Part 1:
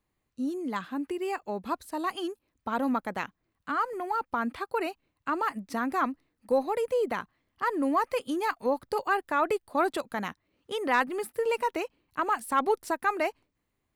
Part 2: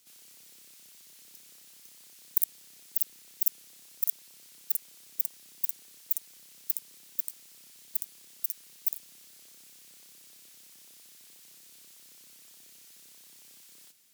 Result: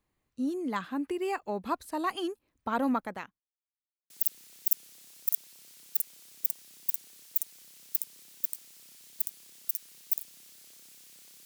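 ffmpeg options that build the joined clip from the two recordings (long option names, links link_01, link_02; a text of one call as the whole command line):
ffmpeg -i cue0.wav -i cue1.wav -filter_complex "[0:a]apad=whole_dur=11.45,atrim=end=11.45,asplit=2[link_01][link_02];[link_01]atrim=end=3.42,asetpts=PTS-STARTPTS,afade=type=out:start_time=2.91:duration=0.51[link_03];[link_02]atrim=start=3.42:end=4.1,asetpts=PTS-STARTPTS,volume=0[link_04];[1:a]atrim=start=2.85:end=10.2,asetpts=PTS-STARTPTS,afade=type=in:duration=0.004:curve=hsin[link_05];[link_03][link_04][link_05]concat=n=3:v=0:a=1" out.wav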